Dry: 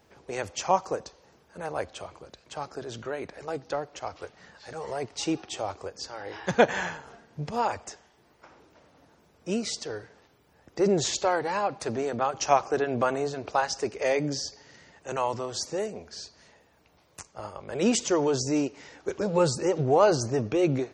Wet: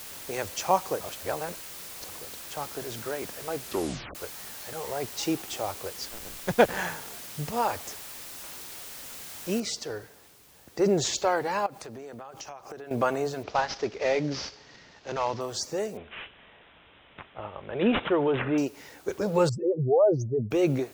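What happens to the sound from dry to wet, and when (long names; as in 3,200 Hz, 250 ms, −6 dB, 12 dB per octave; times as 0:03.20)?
0:01.01–0:02.09: reverse
0:03.59: tape stop 0.56 s
0:06.08–0:06.79: slack as between gear wheels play −26.5 dBFS
0:09.60: noise floor change −42 dB −57 dB
0:11.66–0:12.91: downward compressor 20 to 1, threshold −37 dBFS
0:13.43–0:15.41: variable-slope delta modulation 32 kbit/s
0:15.97–0:18.58: bad sample-rate conversion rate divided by 6×, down none, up filtered
0:19.49–0:20.51: expanding power law on the bin magnitudes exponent 2.5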